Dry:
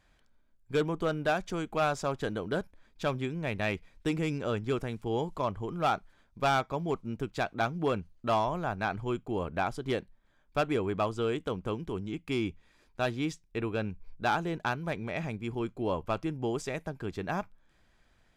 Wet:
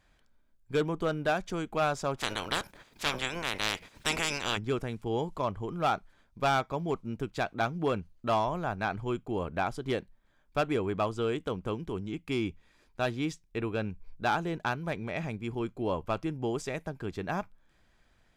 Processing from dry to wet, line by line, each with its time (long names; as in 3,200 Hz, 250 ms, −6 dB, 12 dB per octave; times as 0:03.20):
0:02.17–0:04.56: ceiling on every frequency bin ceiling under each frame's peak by 30 dB